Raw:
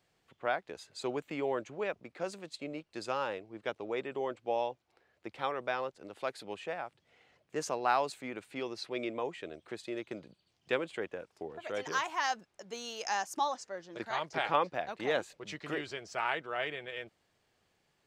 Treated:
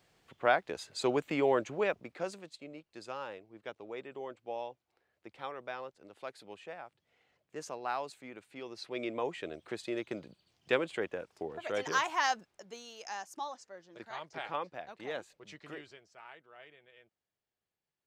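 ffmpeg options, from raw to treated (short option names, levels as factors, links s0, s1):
-af "volume=5.62,afade=t=out:st=1.71:d=0.88:silence=0.237137,afade=t=in:st=8.62:d=0.76:silence=0.334965,afade=t=out:st=12.25:d=0.6:silence=0.298538,afade=t=out:st=15.67:d=0.44:silence=0.281838"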